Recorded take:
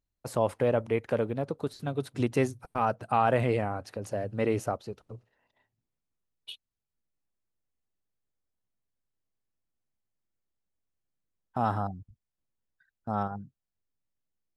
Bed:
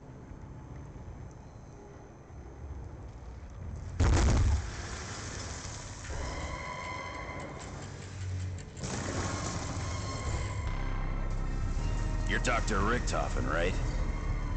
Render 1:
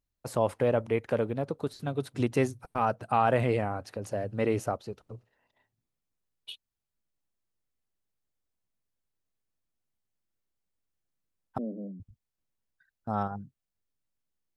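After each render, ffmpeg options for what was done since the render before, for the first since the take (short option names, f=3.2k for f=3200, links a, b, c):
-filter_complex "[0:a]asettb=1/sr,asplit=3[a][b][c];[a]atrim=end=11.584[d];[b]atrim=start=11.58:end=12,asetpts=PTS-STARTPTS,afade=t=in:d=0.004:c=qsin,afade=t=out:st=0.416:d=0.004:c=qsin,asuperpass=centerf=310:order=20:qfactor=0.77[e];[c]atrim=start=11.996[f];[d][e]acrossfade=d=0.004:c1=hsin:c2=qsin[g];[g][f]acrossfade=d=0.004:c1=qsin:c2=hsin"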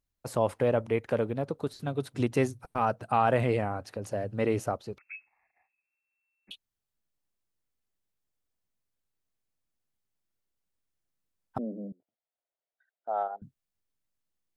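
-filter_complex "[0:a]asettb=1/sr,asplit=3[a][b][c];[a]atrim=end=4.984[d];[b]atrim=start=4.98:end=6.51,asetpts=PTS-STARTPTS,afade=t=in:d=0.004:c=qsin,afade=t=out:st=1.526:d=0.004:c=qsin,lowpass=f=2.3k:t=q:w=0.5098,lowpass=f=2.3k:t=q:w=0.6013,lowpass=f=2.3k:t=q:w=0.9,lowpass=f=2.3k:t=q:w=2.563,afreqshift=-2700[e];[c]atrim=start=6.506[f];[d][e]acrossfade=d=0.004:c1=hsin:c2=qsin[g];[g][f]acrossfade=d=0.004:c1=qsin:c2=hsin,asettb=1/sr,asplit=3[h][i][j];[h]atrim=end=11.924[k];[i]atrim=start=11.92:end=13.42,asetpts=PTS-STARTPTS,afade=t=in:d=0.004:c=qsin,afade=t=out:st=1.496:d=0.004:c=qsin,highpass=f=450:w=0.5412,highpass=f=450:w=1.3066,equalizer=f=670:t=q:w=4:g=8,equalizer=f=1.1k:t=q:w=4:g=-9,equalizer=f=1.7k:t=q:w=4:g=-6,equalizer=f=2.6k:t=q:w=4:g=-9,lowpass=f=3.1k:w=0.5412,lowpass=f=3.1k:w=1.3066[l];[j]atrim=start=13.416[m];[k][l]acrossfade=d=0.004:c1=hsin:c2=qsin[n];[n][m]acrossfade=d=0.004:c1=qsin:c2=hsin"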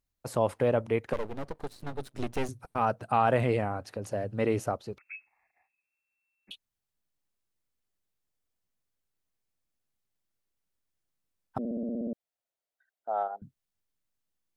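-filter_complex "[0:a]asettb=1/sr,asplit=3[a][b][c];[a]atrim=end=1.134[d];[b]atrim=start=1.13:end=2.49,asetpts=PTS-STARTPTS,afade=t=in:d=0.004:c=qsin,afade=t=out:st=1.356:d=0.004:c=qsin,aeval=exprs='max(val(0),0)':c=same[e];[c]atrim=start=2.486[f];[d][e]acrossfade=d=0.004:c1=hsin:c2=qsin[g];[g][f]acrossfade=d=0.004:c1=qsin:c2=hsin,asplit=10[h][i][j][k][l][m][n][o][p][q];[h]atrim=end=11.652[r];[i]atrim=start=11.588:end=11.652[s];[j]atrim=start=11.588:end=11.652[t];[k]atrim=start=11.588:end=11.652[u];[l]atrim=start=11.588:end=11.652[v];[m]atrim=start=11.588:end=11.652[w];[n]atrim=start=11.588:end=11.652[x];[o]atrim=start=11.588:end=11.652[y];[p]atrim=start=11.588:end=11.652[z];[q]atrim=start=12.128[aa];[r][s]acrossfade=d=0.004:c1=hsin:c2=hsin[ab];[ab][t]acrossfade=d=0.004:c1=hsin:c2=hsin[ac];[ac][u]acrossfade=d=0.004:c1=hsin:c2=hsin[ad];[ad][v]acrossfade=d=0.004:c1=hsin:c2=hsin[ae];[ae][w]acrossfade=d=0.004:c1=hsin:c2=hsin[af];[af][x]acrossfade=d=0.004:c1=hsin:c2=hsin[ag];[ag][y]acrossfade=d=0.004:c1=hsin:c2=hsin[ah];[ah][z]acrossfade=d=0.004:c1=hsin:c2=hsin[ai];[ai][aa]acrossfade=d=0.004:c1=hsin:c2=hsin"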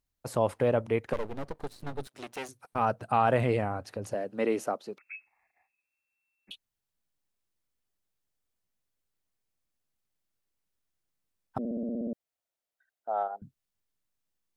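-filter_complex "[0:a]asettb=1/sr,asplit=3[a][b][c];[a]atrim=end=2.074[d];[b]atrim=start=2.07:end=2.73,asetpts=PTS-STARTPTS,afade=t=in:d=0.004:c=qsin,afade=t=out:st=0.656:d=0.004:c=qsin,highpass=f=900:p=1[e];[c]atrim=start=2.726[f];[d][e]acrossfade=d=0.004:c1=hsin:c2=qsin[g];[g][f]acrossfade=d=0.004:c1=qsin:c2=hsin,asettb=1/sr,asplit=3[h][i][j];[h]atrim=end=4.144[k];[i]atrim=start=4.14:end=5.05,asetpts=PTS-STARTPTS,afade=t=in:d=0.004:c=qsin,afade=t=out:st=0.906:d=0.004:c=qsin,highpass=f=200:w=0.5412,highpass=f=200:w=1.3066[l];[j]atrim=start=5.046[m];[k][l]acrossfade=d=0.004:c1=hsin:c2=qsin[n];[n][m]acrossfade=d=0.004:c1=qsin:c2=hsin"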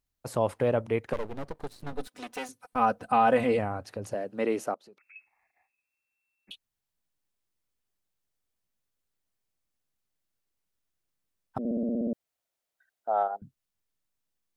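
-filter_complex "[0:a]asettb=1/sr,asplit=3[a][b][c];[a]atrim=end=1.924[d];[b]atrim=start=1.92:end=3.59,asetpts=PTS-STARTPTS,afade=t=in:d=0.004:c=qsin,afade=t=out:st=1.666:d=0.004:c=qsin,aecho=1:1:4:0.75,atrim=end_sample=73647[e];[c]atrim=start=3.586[f];[d][e]acrossfade=d=0.004:c1=hsin:c2=qsin[g];[g][f]acrossfade=d=0.004:c1=qsin:c2=hsin,asettb=1/sr,asplit=3[h][i][j];[h]atrim=end=4.744[k];[i]atrim=start=4.74:end=5.16,asetpts=PTS-STARTPTS,afade=t=in:d=0.004:c=qsin,afade=t=out:st=0.416:d=0.004:c=qsin,acompressor=threshold=-57dB:ratio=2.5:attack=3.2:release=140:knee=1:detection=peak[l];[j]atrim=start=5.156[m];[k][l]acrossfade=d=0.004:c1=hsin:c2=qsin[n];[n][m]acrossfade=d=0.004:c1=qsin:c2=hsin,asplit=3[o][p][q];[o]atrim=end=11.652[r];[p]atrim=start=11.648:end=13.372,asetpts=PTS-STARTPTS,volume=4dB[s];[q]atrim=start=13.368[t];[r][s]acrossfade=d=0.004:c1=hsin:c2=hsin[u];[u][t]acrossfade=d=0.004:c1=hsin:c2=hsin"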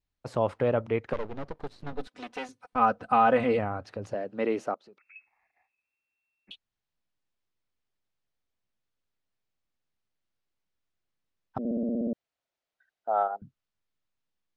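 -af "lowpass=4.6k,adynamicequalizer=threshold=0.00708:dfrequency=1300:dqfactor=5:tfrequency=1300:tqfactor=5:attack=5:release=100:ratio=0.375:range=2.5:mode=boostabove:tftype=bell"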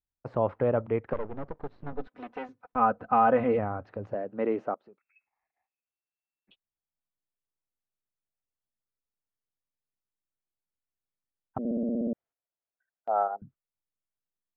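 -af "lowpass=1.6k,agate=range=-10dB:threshold=-55dB:ratio=16:detection=peak"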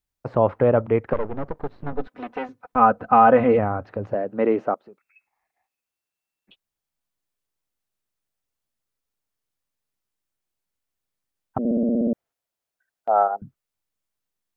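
-af "volume=8dB"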